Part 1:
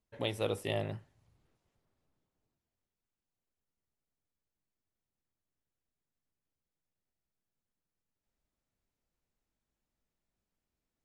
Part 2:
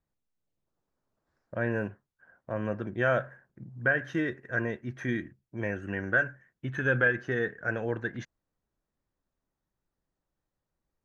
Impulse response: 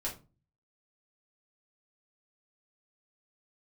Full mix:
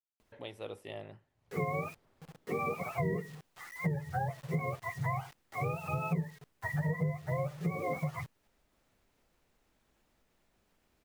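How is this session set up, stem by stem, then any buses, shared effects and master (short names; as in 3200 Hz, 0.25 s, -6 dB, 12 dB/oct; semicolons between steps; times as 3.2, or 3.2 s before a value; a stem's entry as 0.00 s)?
-8.5 dB, 0.20 s, no send, upward compressor, threshold -39 dBFS; tone controls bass -5 dB, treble -6 dB
+2.5 dB, 0.00 s, no send, spectrum mirrored in octaves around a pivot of 500 Hz; bit-crush 9-bit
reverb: off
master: compressor 6:1, threshold -30 dBFS, peak gain reduction 14.5 dB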